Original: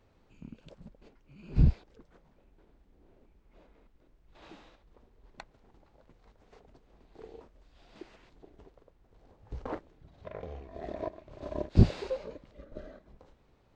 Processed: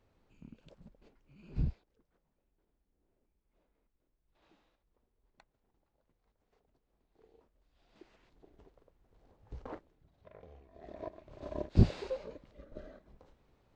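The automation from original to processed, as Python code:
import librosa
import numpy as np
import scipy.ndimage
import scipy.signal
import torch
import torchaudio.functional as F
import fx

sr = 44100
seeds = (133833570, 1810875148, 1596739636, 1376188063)

y = fx.gain(x, sr, db=fx.line((1.47, -6.0), (1.87, -17.0), (7.2, -17.0), (8.56, -5.5), (9.54, -5.5), (10.19, -13.0), (10.77, -13.0), (11.2, -3.5)))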